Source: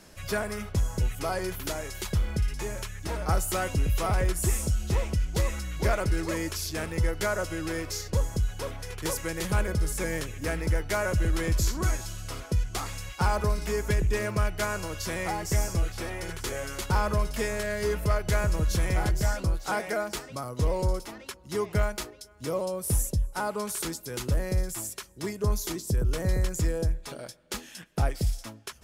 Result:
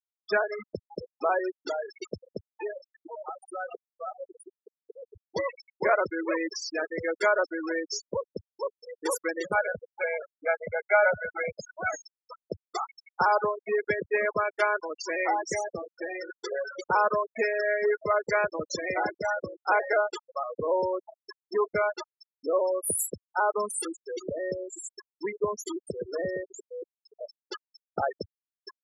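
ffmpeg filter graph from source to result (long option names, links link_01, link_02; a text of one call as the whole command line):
ffmpeg -i in.wav -filter_complex "[0:a]asettb=1/sr,asplit=3[link_01][link_02][link_03];[link_01]atrim=end=2.724[link_04];[link_02]atrim=start=2.72:end=5.15,asetpts=PTS-STARTPTS,afade=type=in:duration=0.004:curve=qsin,afade=type=out:start_time=2.426:duration=0.004:curve=qsin,asplit=8[link_05][link_06][link_07][link_08][link_09][link_10][link_11][link_12];[link_06]adelay=128,afreqshift=-55,volume=-11dB[link_13];[link_07]adelay=256,afreqshift=-110,volume=-15.3dB[link_14];[link_08]adelay=384,afreqshift=-165,volume=-19.6dB[link_15];[link_09]adelay=512,afreqshift=-220,volume=-23.9dB[link_16];[link_10]adelay=640,afreqshift=-275,volume=-28.2dB[link_17];[link_11]adelay=768,afreqshift=-330,volume=-32.5dB[link_18];[link_12]adelay=896,afreqshift=-385,volume=-36.8dB[link_19];[link_05][link_13][link_14][link_15][link_16][link_17][link_18][link_19]amix=inputs=8:normalize=0,atrim=end_sample=107163,acompressor=threshold=-32dB:ratio=8:attack=3.2:release=140:knee=1:detection=peak[link_20];[link_03]atrim=start=5.146[link_21];[link_04][link_20]acrossfade=duration=0.004:curve1=hsin:curve2=qsin[link_22];[link_22][link_21]acrossfade=duration=0.004:curve1=qsin:curve2=hsin,asettb=1/sr,asplit=3[link_23][link_24][link_25];[link_23]atrim=end=9.554[link_26];[link_24]atrim=start=9.55:end=11.93,asetpts=PTS-STARTPTS,afade=type=in:duration=0.004:curve=qsin,afade=type=out:start_time=2.376:duration=0.004:curve=qsin,lowpass=frequency=2400:poles=1,lowshelf=frequency=240:gain=-4.5,aecho=1:1:1.4:0.68,atrim=end_sample=104958[link_27];[link_25]atrim=start=11.926[link_28];[link_26][link_27]acrossfade=duration=0.004:curve1=hsin:curve2=qsin[link_29];[link_29][link_28]acrossfade=duration=0.004:curve1=qsin:curve2=hsin,asettb=1/sr,asplit=3[link_30][link_31][link_32];[link_30]atrim=end=26.444[link_33];[link_31]atrim=start=26.44:end=27.21,asetpts=PTS-STARTPTS,afade=type=in:duration=0.004:curve=qsin,afade=type=out:start_time=0.766:duration=0.004:curve=qsin,highpass=frequency=71:poles=1,aecho=1:1:2.7:0.58,atrim=end_sample=33957,acompressor=threshold=-37dB:ratio=4:attack=3.2:release=140:knee=1:detection=peak[link_34];[link_32]atrim=start=27.206[link_35];[link_33][link_34]acrossfade=duration=0.004:curve1=hsin:curve2=qsin[link_36];[link_36][link_35]acrossfade=duration=0.004:curve1=qsin:curve2=hsin,afftfilt=real='re*gte(hypot(re,im),0.00562)':imag='im*gte(hypot(re,im),0.00562)':win_size=1024:overlap=0.75,highpass=410,afftfilt=real='re*gte(hypot(re,im),0.0447)':imag='im*gte(hypot(re,im),0.0447)':win_size=1024:overlap=0.75,volume=6.5dB" out.wav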